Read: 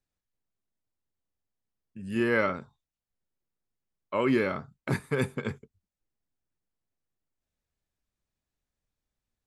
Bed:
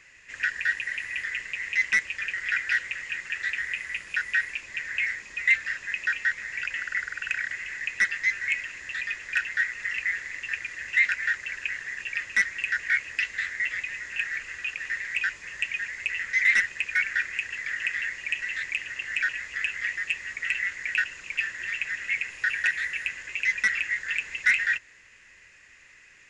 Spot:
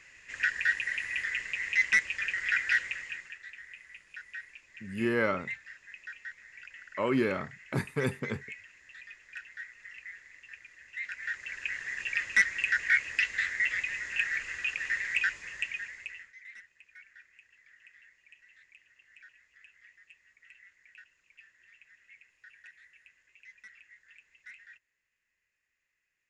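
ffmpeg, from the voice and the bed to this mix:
-filter_complex "[0:a]adelay=2850,volume=-2.5dB[a];[1:a]volume=15.5dB,afade=t=out:st=2.79:d=0.6:silence=0.158489,afade=t=in:st=10.99:d=1.13:silence=0.141254,afade=t=out:st=15.13:d=1.21:silence=0.0398107[b];[a][b]amix=inputs=2:normalize=0"

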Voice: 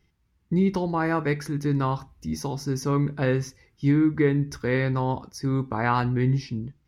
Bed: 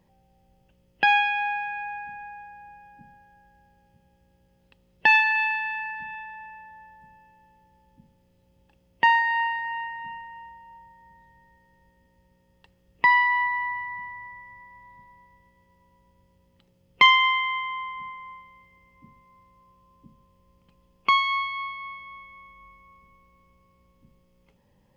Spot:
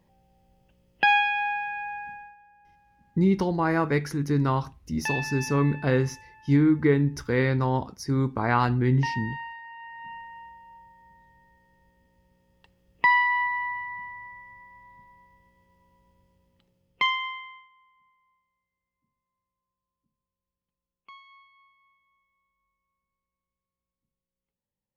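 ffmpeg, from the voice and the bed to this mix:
-filter_complex "[0:a]adelay=2650,volume=0.5dB[a];[1:a]volume=10.5dB,afade=t=out:st=2.1:d=0.26:silence=0.251189,afade=t=in:st=9.78:d=0.42:silence=0.281838,afade=t=out:st=16.11:d=1.58:silence=0.0446684[b];[a][b]amix=inputs=2:normalize=0"

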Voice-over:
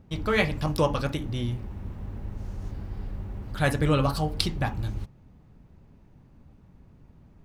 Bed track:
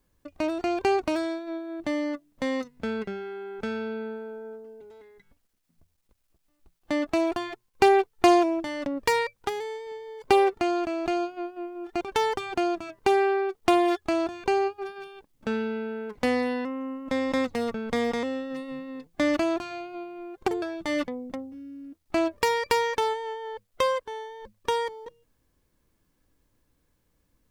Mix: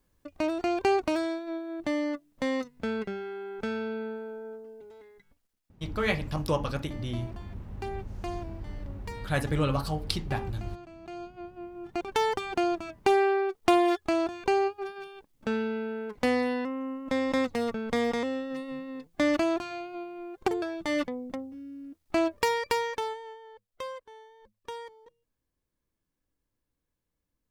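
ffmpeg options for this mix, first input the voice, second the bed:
-filter_complex "[0:a]adelay=5700,volume=-4dB[a];[1:a]volume=17dB,afade=t=out:st=5.08:d=0.95:silence=0.125893,afade=t=in:st=11:d=1.29:silence=0.125893,afade=t=out:st=22.27:d=1.21:silence=0.237137[b];[a][b]amix=inputs=2:normalize=0"

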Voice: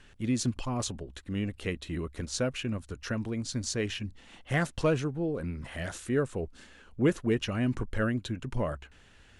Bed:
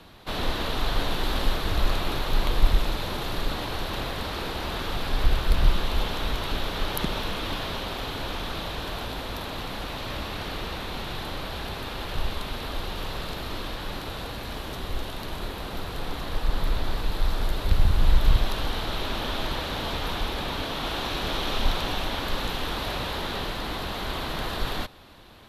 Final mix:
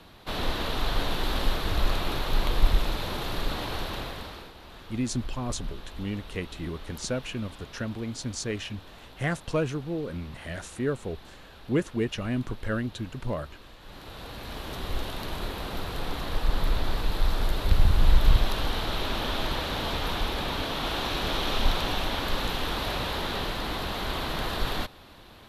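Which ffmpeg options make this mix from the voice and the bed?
-filter_complex "[0:a]adelay=4700,volume=-0.5dB[a];[1:a]volume=15dB,afade=t=out:st=3.78:d=0.74:silence=0.177828,afade=t=in:st=13.8:d=1.15:silence=0.149624[b];[a][b]amix=inputs=2:normalize=0"

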